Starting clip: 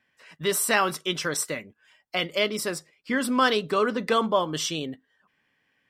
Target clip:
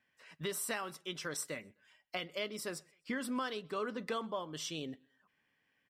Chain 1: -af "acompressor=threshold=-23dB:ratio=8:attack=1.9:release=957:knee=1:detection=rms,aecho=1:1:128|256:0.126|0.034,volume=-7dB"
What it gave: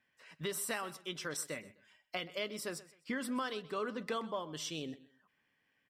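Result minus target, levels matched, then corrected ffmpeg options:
echo-to-direct +9.5 dB
-af "acompressor=threshold=-23dB:ratio=8:attack=1.9:release=957:knee=1:detection=rms,aecho=1:1:128|256:0.0422|0.0114,volume=-7dB"

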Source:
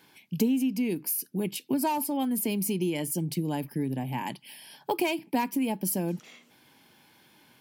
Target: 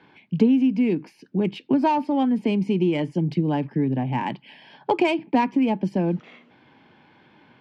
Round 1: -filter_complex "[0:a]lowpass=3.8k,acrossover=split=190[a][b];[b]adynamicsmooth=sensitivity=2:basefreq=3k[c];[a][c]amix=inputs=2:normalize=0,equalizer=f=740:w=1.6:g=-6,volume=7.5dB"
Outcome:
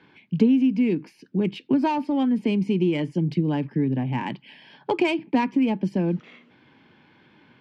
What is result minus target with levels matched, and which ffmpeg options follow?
1000 Hz band -3.5 dB
-filter_complex "[0:a]lowpass=3.8k,acrossover=split=190[a][b];[b]adynamicsmooth=sensitivity=2:basefreq=3k[c];[a][c]amix=inputs=2:normalize=0,volume=7.5dB"

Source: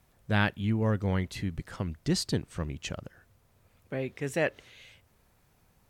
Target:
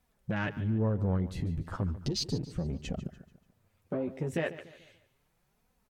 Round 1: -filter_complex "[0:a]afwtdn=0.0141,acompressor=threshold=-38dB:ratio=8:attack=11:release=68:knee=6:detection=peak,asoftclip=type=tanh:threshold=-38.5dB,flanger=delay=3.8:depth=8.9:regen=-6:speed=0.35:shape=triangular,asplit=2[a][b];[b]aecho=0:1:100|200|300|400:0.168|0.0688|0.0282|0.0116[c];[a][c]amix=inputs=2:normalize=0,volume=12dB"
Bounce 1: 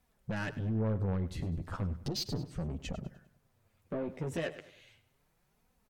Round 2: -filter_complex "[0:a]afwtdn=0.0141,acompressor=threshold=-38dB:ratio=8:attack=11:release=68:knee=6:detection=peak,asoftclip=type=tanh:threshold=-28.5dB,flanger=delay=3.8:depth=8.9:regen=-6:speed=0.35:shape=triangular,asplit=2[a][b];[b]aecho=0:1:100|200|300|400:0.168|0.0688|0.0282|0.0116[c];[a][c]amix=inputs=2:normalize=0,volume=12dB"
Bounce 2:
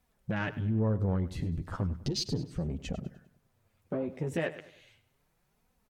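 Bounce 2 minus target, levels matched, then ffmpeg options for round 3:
echo 45 ms early
-filter_complex "[0:a]afwtdn=0.0141,acompressor=threshold=-38dB:ratio=8:attack=11:release=68:knee=6:detection=peak,asoftclip=type=tanh:threshold=-28.5dB,flanger=delay=3.8:depth=8.9:regen=-6:speed=0.35:shape=triangular,asplit=2[a][b];[b]aecho=0:1:145|290|435|580:0.168|0.0688|0.0282|0.0116[c];[a][c]amix=inputs=2:normalize=0,volume=12dB"

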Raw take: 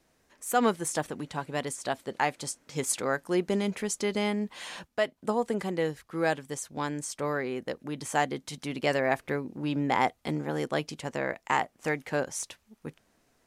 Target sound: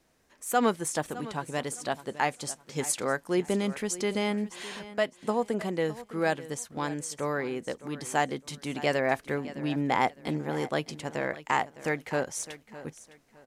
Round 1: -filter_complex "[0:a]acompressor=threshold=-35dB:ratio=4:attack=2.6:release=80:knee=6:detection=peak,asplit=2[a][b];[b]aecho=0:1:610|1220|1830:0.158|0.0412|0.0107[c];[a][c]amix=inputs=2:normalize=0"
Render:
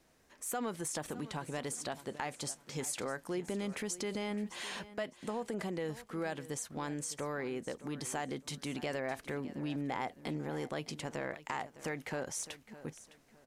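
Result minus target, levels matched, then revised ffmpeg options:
compressor: peak gain reduction +14.5 dB
-filter_complex "[0:a]asplit=2[a][b];[b]aecho=0:1:610|1220|1830:0.158|0.0412|0.0107[c];[a][c]amix=inputs=2:normalize=0"

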